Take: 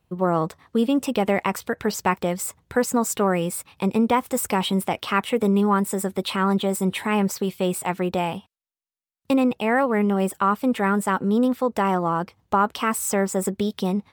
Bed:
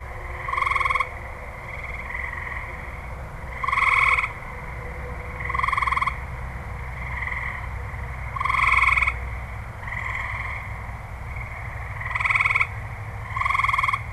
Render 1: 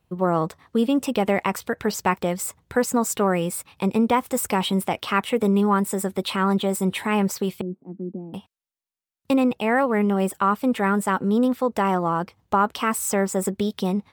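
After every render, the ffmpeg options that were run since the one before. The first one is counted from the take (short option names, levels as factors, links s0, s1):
-filter_complex "[0:a]asettb=1/sr,asplit=3[s0][s1][s2];[s0]atrim=end=7.614[s3];[s1]atrim=start=7.61:end=8.34,asetpts=PTS-STARTPTS,afade=t=in:d=0.004:c=qsin,afade=t=out:st=0.726:d=0.004:c=qsin,asuperpass=centerf=250:order=4:qfactor=1.9[s4];[s2]atrim=start=8.336[s5];[s3][s4]acrossfade=d=0.004:c1=hsin:c2=qsin[s6];[s6][s5]acrossfade=d=0.004:c1=qsin:c2=hsin"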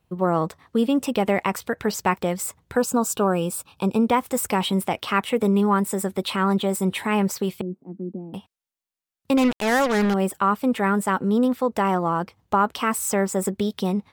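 -filter_complex "[0:a]asettb=1/sr,asplit=3[s0][s1][s2];[s0]atrim=end=2.774[s3];[s1]atrim=start=2.77:end=4.02,asetpts=PTS-STARTPTS,afade=t=in:d=0.004:c=qsin,afade=t=out:st=1.246:d=0.004:c=qsin,asuperstop=centerf=2000:order=4:qfactor=2.6[s4];[s2]atrim=start=4.016[s5];[s3][s4]acrossfade=d=0.004:c1=hsin:c2=qsin[s6];[s6][s5]acrossfade=d=0.004:c1=qsin:c2=hsin,asettb=1/sr,asplit=3[s7][s8][s9];[s7]atrim=end=9.374[s10];[s8]atrim=start=9.37:end=10.14,asetpts=PTS-STARTPTS,afade=t=in:d=0.004:c=qsin,afade=t=out:st=0.766:d=0.004:c=qsin,acrusher=bits=3:mix=0:aa=0.5[s11];[s9]atrim=start=10.136[s12];[s10][s11]acrossfade=d=0.004:c1=hsin:c2=qsin[s13];[s13][s12]acrossfade=d=0.004:c1=qsin:c2=hsin"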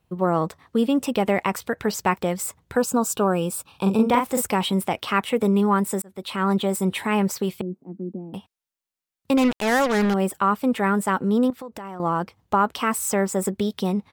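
-filter_complex "[0:a]asplit=3[s0][s1][s2];[s0]afade=t=out:st=3.72:d=0.02[s3];[s1]asplit=2[s4][s5];[s5]adelay=41,volume=0.596[s6];[s4][s6]amix=inputs=2:normalize=0,afade=t=in:st=3.72:d=0.02,afade=t=out:st=4.41:d=0.02[s7];[s2]afade=t=in:st=4.41:d=0.02[s8];[s3][s7][s8]amix=inputs=3:normalize=0,asettb=1/sr,asplit=3[s9][s10][s11];[s9]atrim=end=11.504[s12];[s10]atrim=start=11.5:end=12,asetpts=PTS-STARTPTS,afade=t=in:d=0.004:c=qsin,afade=t=out:st=0.496:d=0.004:c=qsin,acompressor=threshold=0.0224:ratio=6:attack=3.2:release=140:knee=1:detection=peak[s13];[s11]atrim=start=11.996[s14];[s12][s13]acrossfade=d=0.004:c1=hsin:c2=qsin[s15];[s15][s14]acrossfade=d=0.004:c1=qsin:c2=hsin,asplit=2[s16][s17];[s16]atrim=end=6.02,asetpts=PTS-STARTPTS,afade=t=out:st=6.016:d=0.004:c=hsin[s18];[s17]atrim=start=6.02,asetpts=PTS-STARTPTS,afade=t=in:d=0.48[s19];[s18][s19]concat=n=2:v=0:a=1"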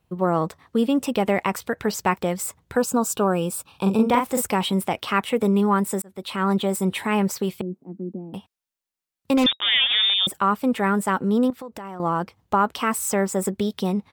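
-filter_complex "[0:a]asettb=1/sr,asplit=3[s0][s1][s2];[s0]atrim=end=9.464[s3];[s1]atrim=start=9.46:end=10.27,asetpts=PTS-STARTPTS,afade=t=in:d=0.004:c=qsin,afade=t=out:st=0.806:d=0.004:c=qsin,lowpass=f=3200:t=q:w=0.5098,lowpass=f=3200:t=q:w=0.6013,lowpass=f=3200:t=q:w=0.9,lowpass=f=3200:t=q:w=2.563,afreqshift=-3800[s4];[s2]atrim=start=10.266[s5];[s3][s4]acrossfade=d=0.004:c1=hsin:c2=qsin[s6];[s6][s5]acrossfade=d=0.004:c1=qsin:c2=hsin"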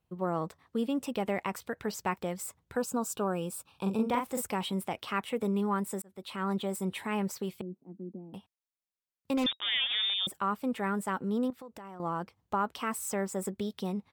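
-af "volume=0.299"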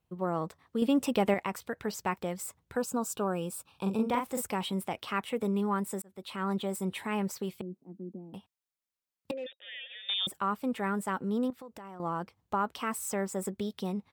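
-filter_complex "[0:a]asettb=1/sr,asplit=3[s0][s1][s2];[s0]atrim=end=9.314[s3];[s1]atrim=start=9.31:end=10.09,asetpts=PTS-STARTPTS,afade=t=in:d=0.004:c=qsin,afade=t=out:st=0.776:d=0.004:c=qsin,asplit=3[s4][s5][s6];[s4]bandpass=f=530:t=q:w=8,volume=1[s7];[s5]bandpass=f=1840:t=q:w=8,volume=0.501[s8];[s6]bandpass=f=2480:t=q:w=8,volume=0.355[s9];[s7][s8][s9]amix=inputs=3:normalize=0[s10];[s2]atrim=start=10.086[s11];[s3][s10]acrossfade=d=0.004:c1=hsin:c2=qsin[s12];[s12][s11]acrossfade=d=0.004:c1=qsin:c2=hsin,asplit=3[s13][s14][s15];[s13]atrim=end=0.822[s16];[s14]atrim=start=0.818:end=1.342,asetpts=PTS-STARTPTS,volume=1.88[s17];[s15]atrim=start=1.338[s18];[s16][s17]acrossfade=d=0.004:c1=hsin:c2=hsin[s19];[s19][s18]acrossfade=d=0.004:c1=hsin:c2=hsin"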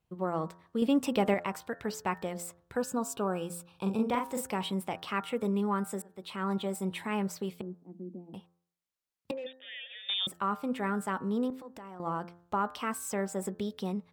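-af "highshelf=f=10000:g=-5,bandreject=f=86.61:t=h:w=4,bandreject=f=173.22:t=h:w=4,bandreject=f=259.83:t=h:w=4,bandreject=f=346.44:t=h:w=4,bandreject=f=433.05:t=h:w=4,bandreject=f=519.66:t=h:w=4,bandreject=f=606.27:t=h:w=4,bandreject=f=692.88:t=h:w=4,bandreject=f=779.49:t=h:w=4,bandreject=f=866.1:t=h:w=4,bandreject=f=952.71:t=h:w=4,bandreject=f=1039.32:t=h:w=4,bandreject=f=1125.93:t=h:w=4,bandreject=f=1212.54:t=h:w=4,bandreject=f=1299.15:t=h:w=4,bandreject=f=1385.76:t=h:w=4,bandreject=f=1472.37:t=h:w=4,bandreject=f=1558.98:t=h:w=4,bandreject=f=1645.59:t=h:w=4,bandreject=f=1732.2:t=h:w=4,bandreject=f=1818.81:t=h:w=4"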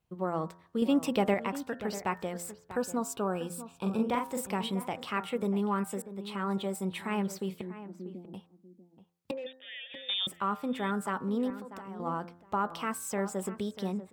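-filter_complex "[0:a]asplit=2[s0][s1];[s1]adelay=641.4,volume=0.224,highshelf=f=4000:g=-14.4[s2];[s0][s2]amix=inputs=2:normalize=0"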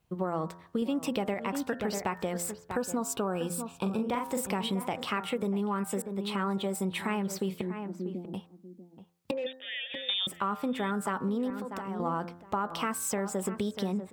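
-filter_complex "[0:a]asplit=2[s0][s1];[s1]alimiter=level_in=1.19:limit=0.0631:level=0:latency=1:release=144,volume=0.841,volume=1.12[s2];[s0][s2]amix=inputs=2:normalize=0,acompressor=threshold=0.0447:ratio=6"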